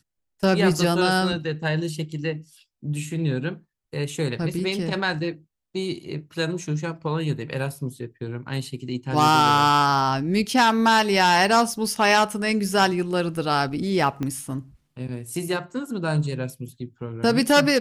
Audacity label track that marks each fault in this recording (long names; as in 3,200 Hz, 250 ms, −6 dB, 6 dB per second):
14.230000	14.230000	click −16 dBFS